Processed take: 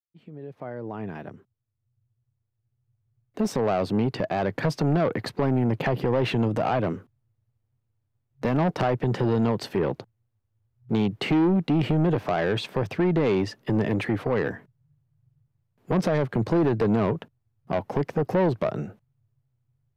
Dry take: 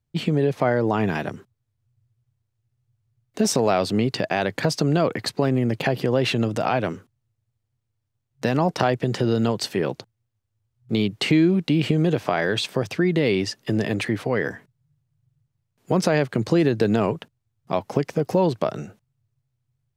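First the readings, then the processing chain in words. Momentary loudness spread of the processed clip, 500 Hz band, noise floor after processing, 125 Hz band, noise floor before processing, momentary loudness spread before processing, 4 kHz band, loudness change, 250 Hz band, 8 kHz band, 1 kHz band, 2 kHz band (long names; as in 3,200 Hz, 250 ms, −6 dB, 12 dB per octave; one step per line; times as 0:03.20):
13 LU, −3.0 dB, −77 dBFS, −1.5 dB, −77 dBFS, 7 LU, −8.5 dB, −2.5 dB, −2.5 dB, below −10 dB, −2.5 dB, −5.5 dB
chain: fade in at the beginning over 4.87 s
parametric band 7,600 Hz −15 dB 2.6 octaves
downsampling to 32,000 Hz
soft clipping −19.5 dBFS, distortion −10 dB
level +2.5 dB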